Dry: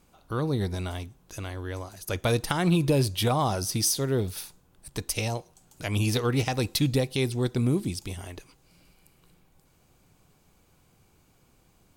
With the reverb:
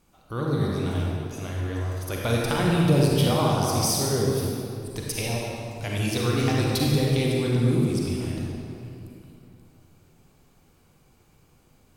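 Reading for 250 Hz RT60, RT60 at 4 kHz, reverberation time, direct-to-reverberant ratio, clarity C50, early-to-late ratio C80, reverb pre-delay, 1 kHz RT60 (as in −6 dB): 3.2 s, 1.7 s, 2.8 s, −3.5 dB, −2.5 dB, −0.5 dB, 36 ms, 2.6 s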